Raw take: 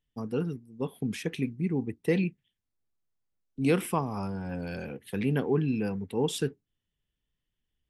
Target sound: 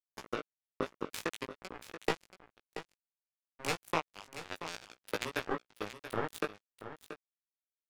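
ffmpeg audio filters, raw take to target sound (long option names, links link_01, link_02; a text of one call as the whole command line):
ffmpeg -i in.wav -filter_complex "[0:a]asettb=1/sr,asplit=3[link_01][link_02][link_03];[link_01]atrim=end=1.524[link_04];[link_02]atrim=start=1.52:end=3.82,asetpts=PTS-STARTPTS,afade=type=in:duration=0.004:curve=qsin,afade=type=out:start_time=2.296:duration=0.004:curve=qsin,aeval=exprs='if(lt(val(0),0),0.251*val(0),val(0))':channel_layout=same[link_05];[link_03]atrim=start=3.816[link_06];[link_04][link_05]acrossfade=duration=0.004:curve1=hsin:curve2=qsin[link_07];[link_07][link_06]acrossfade=duration=0.004:curve1=qsin:curve2=hsin,highpass=frequency=340:width=0.5412,highpass=frequency=340:width=1.3066,bandreject=frequency=660:width=12,acompressor=threshold=-45dB:ratio=4,acrusher=bits=5:mix=0:aa=0.5,flanger=delay=16.5:depth=3.1:speed=0.58,aecho=1:1:681:0.266,volume=18dB" out.wav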